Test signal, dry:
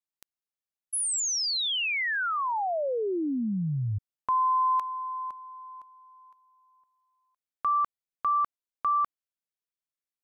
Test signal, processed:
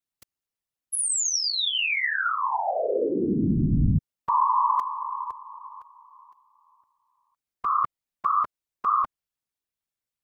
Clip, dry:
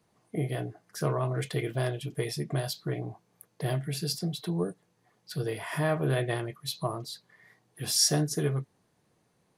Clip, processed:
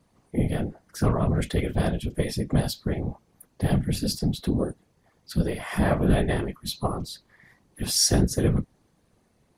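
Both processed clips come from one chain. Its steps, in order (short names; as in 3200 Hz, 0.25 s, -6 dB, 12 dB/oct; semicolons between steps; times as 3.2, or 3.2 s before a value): low shelf 140 Hz +10 dB; whisperiser; gain +2.5 dB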